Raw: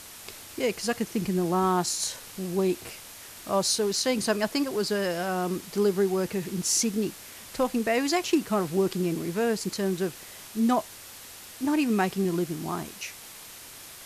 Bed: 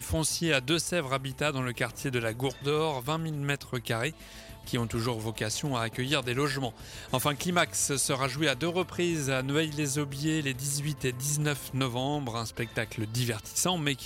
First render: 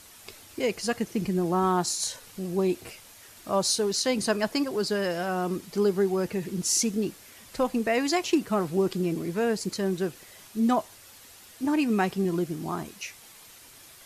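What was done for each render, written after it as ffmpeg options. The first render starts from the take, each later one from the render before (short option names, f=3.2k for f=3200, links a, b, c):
-af "afftdn=nr=7:nf=-45"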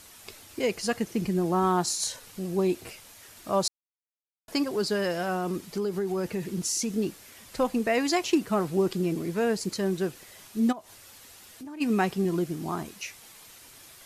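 -filter_complex "[0:a]asettb=1/sr,asplit=3[a][b][c];[a]atrim=end=5.354[d];[b]atrim=start=5.35:end=6.97,asetpts=PTS-STARTPTS,afade=t=in:d=0.004:c=qsin,afade=t=out:st=1.616:d=0.004:c=qsin,acompressor=threshold=-25dB:ratio=5:attack=3.2:release=140:knee=1:detection=peak[e];[c]atrim=start=6.966[f];[d][e]acrossfade=d=0.004:c1=hsin:c2=qsin[g];[g][f]acrossfade=d=0.004:c1=qsin:c2=hsin,asplit=3[h][i][j];[h]afade=t=out:st=10.71:d=0.02[k];[i]acompressor=threshold=-41dB:ratio=4:attack=3.2:release=140:knee=1:detection=peak,afade=t=in:st=10.71:d=0.02,afade=t=out:st=11.8:d=0.02[l];[j]afade=t=in:st=11.8:d=0.02[m];[k][l][m]amix=inputs=3:normalize=0,asplit=3[n][o][p];[n]atrim=end=3.68,asetpts=PTS-STARTPTS,afade=t=out:st=3.676:d=0.004:c=hsin[q];[o]atrim=start=3.68:end=4.48,asetpts=PTS-STARTPTS,volume=0[r];[p]atrim=start=4.48,asetpts=PTS-STARTPTS,afade=t=in:d=0.004:c=hsin[s];[q][r][s]concat=n=3:v=0:a=1"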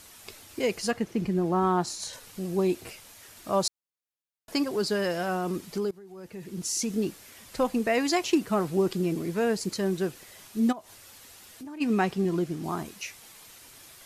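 -filter_complex "[0:a]asettb=1/sr,asplit=3[a][b][c];[a]atrim=end=0.914[d];[b]atrim=start=0.91:end=2.13,asetpts=PTS-STARTPTS,afade=t=in:d=0.004:c=qsin,afade=t=out:st=1.216:d=0.004:c=qsin,highshelf=f=4.5k:g=-10.5[e];[c]atrim=start=2.126[f];[d][e]acrossfade=d=0.004:c1=hsin:c2=qsin[g];[g][f]acrossfade=d=0.004:c1=qsin:c2=hsin,asettb=1/sr,asplit=3[h][i][j];[h]atrim=end=11.784[k];[i]atrim=start=11.78:end=12.64,asetpts=PTS-STARTPTS,afade=t=in:d=0.004:c=qsin,afade=t=out:st=0.856:d=0.004:c=qsin,highshelf=f=9.7k:g=-9.5[l];[j]atrim=start=12.636[m];[k][l]acrossfade=d=0.004:c1=hsin:c2=qsin[n];[n][m]acrossfade=d=0.004:c1=qsin:c2=hsin,asplit=2[o][p];[o]atrim=end=5.91,asetpts=PTS-STARTPTS,afade=t=out:st=5.906:d=0.004:c=hsin:silence=0.1[q];[p]atrim=start=5.91,asetpts=PTS-STARTPTS,afade=t=in:d=0.88:c=qua:silence=0.1[r];[q][r]concat=n=2:v=0:a=1"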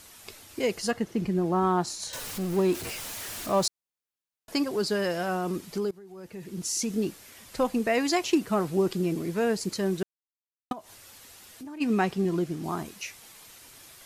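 -filter_complex "[0:a]asettb=1/sr,asplit=3[a][b][c];[a]atrim=end=0.694[d];[b]atrim=start=0.69:end=1.18,asetpts=PTS-STARTPTS,afade=t=in:d=0.004:c=qsin,afade=t=out:st=0.486:d=0.004:c=qsin,bandreject=f=2.4k:w=12[e];[c]atrim=start=1.176[f];[d][e]acrossfade=d=0.004:c1=hsin:c2=qsin[g];[g][f]acrossfade=d=0.004:c1=qsin:c2=hsin,asettb=1/sr,asplit=3[h][i][j];[h]atrim=end=2.134[k];[i]atrim=start=2.13:end=3.66,asetpts=PTS-STARTPTS,afade=t=in:d=0.004:c=qsin,afade=t=out:st=1.526:d=0.004:c=qsin,aeval=exprs='val(0)+0.5*0.0211*sgn(val(0))':c=same[l];[j]atrim=start=3.656[m];[k][l]acrossfade=d=0.004:c1=hsin:c2=qsin[n];[n][m]acrossfade=d=0.004:c1=qsin:c2=hsin,asplit=3[o][p][q];[o]atrim=end=10.03,asetpts=PTS-STARTPTS,afade=t=out:st=10.026:d=0.004:c=hsin[r];[p]atrim=start=10.03:end=10.71,asetpts=PTS-STARTPTS,volume=0[s];[q]atrim=start=10.71,asetpts=PTS-STARTPTS,afade=t=in:d=0.004:c=hsin[t];[r][s][t]concat=n=3:v=0:a=1"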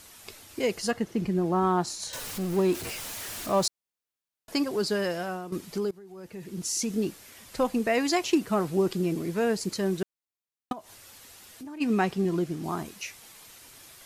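-filter_complex "[0:a]asplit=2[a][b];[a]atrim=end=5.52,asetpts=PTS-STARTPTS,afade=t=out:st=4.86:d=0.66:c=qsin:silence=0.237137[c];[b]atrim=start=5.52,asetpts=PTS-STARTPTS,afade=t=in:d=0.004:c=hsin:silence=0.237137[d];[c][d]concat=n=2:v=0:a=1"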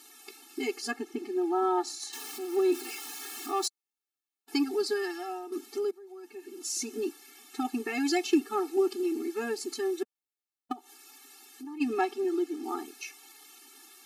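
-af "asoftclip=type=hard:threshold=-15.5dB,afftfilt=real='re*eq(mod(floor(b*sr/1024/230),2),1)':imag='im*eq(mod(floor(b*sr/1024/230),2),1)':win_size=1024:overlap=0.75"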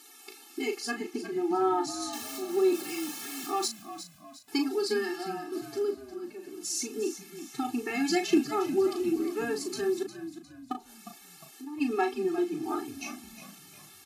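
-filter_complex "[0:a]asplit=2[a][b];[b]adelay=37,volume=-7dB[c];[a][c]amix=inputs=2:normalize=0,asplit=5[d][e][f][g][h];[e]adelay=356,afreqshift=-51,volume=-12dB[i];[f]adelay=712,afreqshift=-102,volume=-19.7dB[j];[g]adelay=1068,afreqshift=-153,volume=-27.5dB[k];[h]adelay=1424,afreqshift=-204,volume=-35.2dB[l];[d][i][j][k][l]amix=inputs=5:normalize=0"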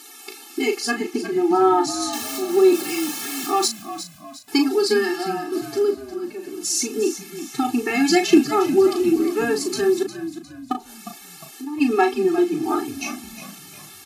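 -af "volume=10dB"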